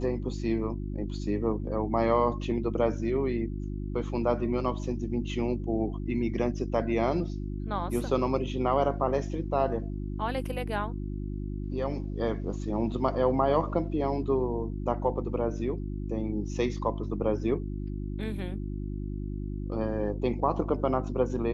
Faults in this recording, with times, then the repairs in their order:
mains hum 50 Hz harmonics 7 −34 dBFS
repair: hum removal 50 Hz, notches 7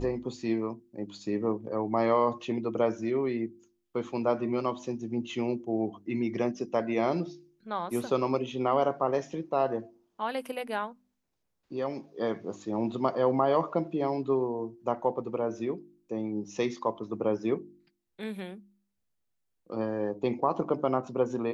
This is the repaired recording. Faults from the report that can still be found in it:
none of them is left

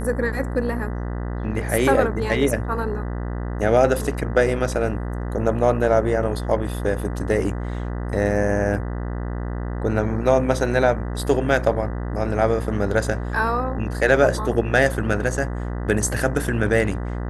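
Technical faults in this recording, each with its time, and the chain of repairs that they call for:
mains buzz 60 Hz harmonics 33 −27 dBFS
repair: hum removal 60 Hz, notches 33

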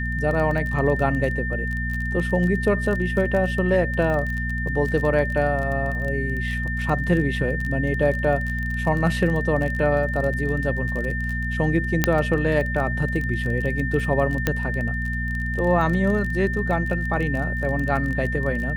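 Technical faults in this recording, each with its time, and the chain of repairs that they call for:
surface crackle 25 per second −27 dBFS
mains hum 60 Hz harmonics 4 −27 dBFS
whistle 1,800 Hz −28 dBFS
0:12.04: click −2 dBFS
0:14.47: click −6 dBFS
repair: click removal
notch filter 1,800 Hz, Q 30
hum removal 60 Hz, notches 4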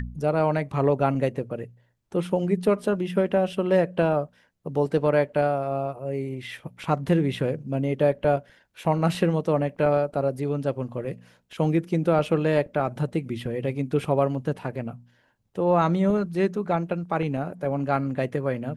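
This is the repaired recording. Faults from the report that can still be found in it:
none of them is left

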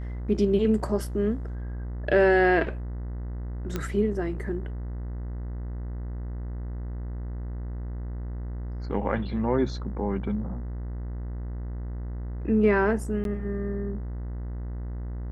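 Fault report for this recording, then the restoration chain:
mains buzz 60 Hz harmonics 34 −33 dBFS
0:03.76: click −15 dBFS
0:13.24–0:13.25: drop-out 12 ms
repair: click removal
hum removal 60 Hz, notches 34
repair the gap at 0:13.24, 12 ms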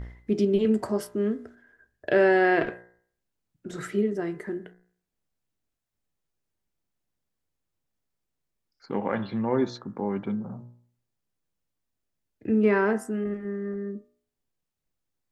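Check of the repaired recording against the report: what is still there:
none of them is left

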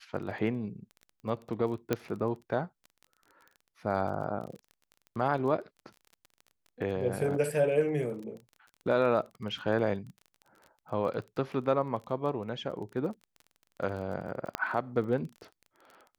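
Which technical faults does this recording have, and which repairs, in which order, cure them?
surface crackle 23 per second −40 dBFS
0:01.93: click −14 dBFS
0:14.55: click −15 dBFS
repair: click removal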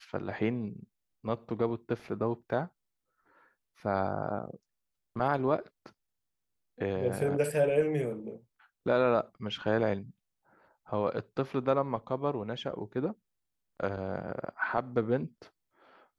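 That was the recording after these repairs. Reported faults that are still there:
none of them is left

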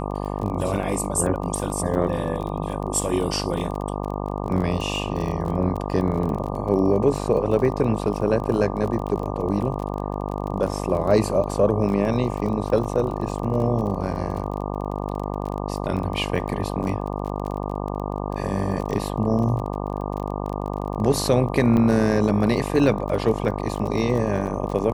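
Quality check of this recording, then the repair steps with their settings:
mains buzz 50 Hz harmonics 24 −28 dBFS
surface crackle 26 per second −29 dBFS
0:21.77: drop-out 3.3 ms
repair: click removal
hum removal 50 Hz, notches 24
repair the gap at 0:21.77, 3.3 ms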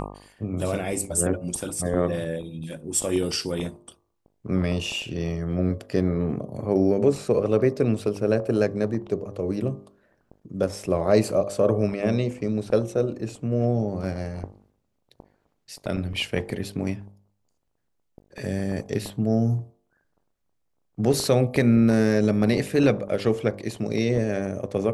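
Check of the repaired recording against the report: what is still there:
none of them is left

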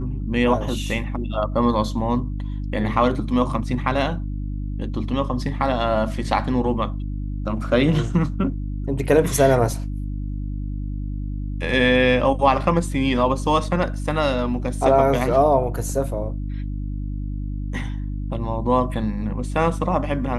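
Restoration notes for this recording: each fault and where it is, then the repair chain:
mains hum 50 Hz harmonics 6 −27 dBFS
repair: hum removal 50 Hz, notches 6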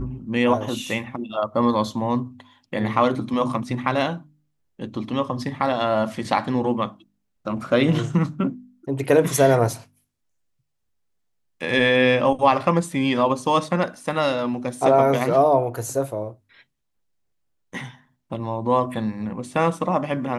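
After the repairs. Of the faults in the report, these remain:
none of them is left

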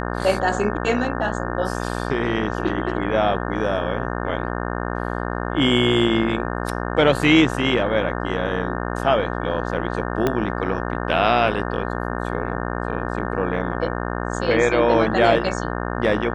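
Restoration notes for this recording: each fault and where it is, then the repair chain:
mains buzz 60 Hz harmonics 30 −26 dBFS
0:10.27: click −7 dBFS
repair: click removal
hum removal 60 Hz, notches 30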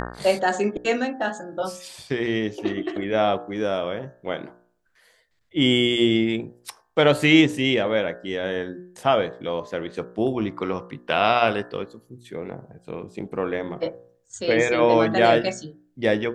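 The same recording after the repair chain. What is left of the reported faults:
0:10.27: click

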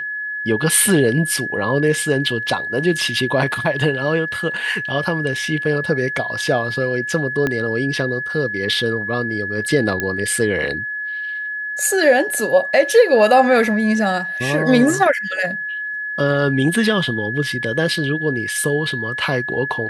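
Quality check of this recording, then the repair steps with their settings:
whistle 1,700 Hz −23 dBFS
0:07.47: click −8 dBFS
0:10.00: click −7 dBFS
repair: click removal
notch filter 1,700 Hz, Q 30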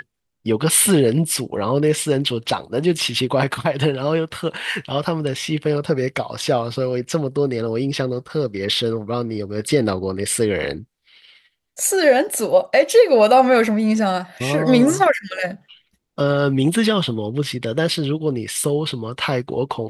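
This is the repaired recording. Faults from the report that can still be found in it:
0:07.47: click

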